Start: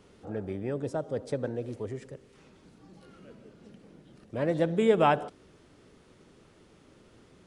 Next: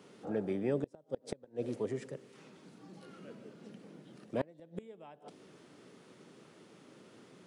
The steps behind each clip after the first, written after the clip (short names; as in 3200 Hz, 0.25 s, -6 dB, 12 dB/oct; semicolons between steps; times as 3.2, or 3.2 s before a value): HPF 140 Hz 24 dB/oct; dynamic EQ 1400 Hz, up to -6 dB, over -49 dBFS, Q 1.9; flipped gate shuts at -22 dBFS, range -30 dB; gain +1 dB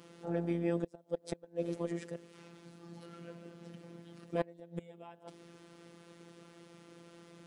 robotiser 170 Hz; gain +3.5 dB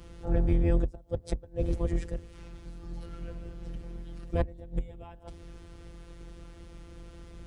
octaver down 2 oct, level +3 dB; low shelf 77 Hz +11.5 dB; gain +2 dB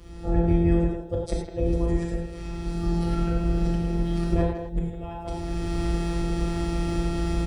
recorder AGC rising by 17 dB/s; speakerphone echo 0.16 s, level -7 dB; non-linear reverb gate 0.13 s flat, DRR -1 dB